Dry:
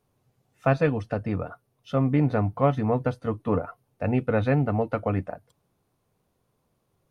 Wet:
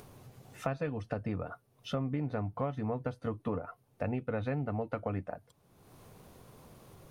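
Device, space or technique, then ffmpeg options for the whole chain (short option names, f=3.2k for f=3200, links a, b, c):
upward and downward compression: -af "acompressor=mode=upward:threshold=-39dB:ratio=2.5,acompressor=threshold=-32dB:ratio=5"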